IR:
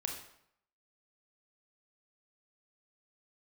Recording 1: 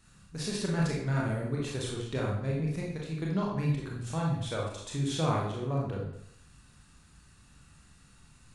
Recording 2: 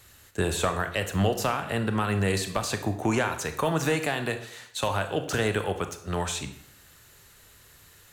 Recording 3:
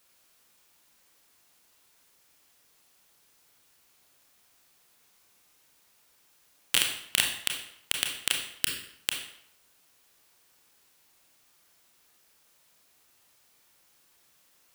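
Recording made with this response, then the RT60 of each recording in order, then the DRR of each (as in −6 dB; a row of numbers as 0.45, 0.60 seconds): 3; 0.70, 0.70, 0.70 seconds; −3.5, 7.5, 1.5 decibels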